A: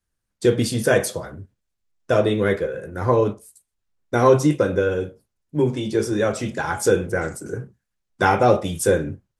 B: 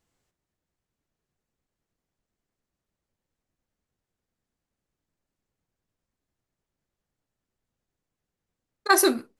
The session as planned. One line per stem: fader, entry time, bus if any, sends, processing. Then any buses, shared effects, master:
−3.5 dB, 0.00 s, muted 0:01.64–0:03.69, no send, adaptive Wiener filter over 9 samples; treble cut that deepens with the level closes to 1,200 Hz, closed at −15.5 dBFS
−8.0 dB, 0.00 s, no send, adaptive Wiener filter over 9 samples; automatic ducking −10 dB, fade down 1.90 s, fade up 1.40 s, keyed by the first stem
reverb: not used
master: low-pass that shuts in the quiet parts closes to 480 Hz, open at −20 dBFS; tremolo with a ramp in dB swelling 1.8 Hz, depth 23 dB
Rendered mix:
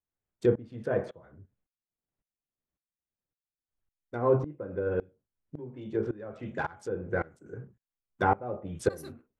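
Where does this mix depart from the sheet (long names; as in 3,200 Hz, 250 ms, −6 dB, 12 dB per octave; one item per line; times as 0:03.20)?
stem B −8.0 dB → 0.0 dB
master: missing low-pass that shuts in the quiet parts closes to 480 Hz, open at −20 dBFS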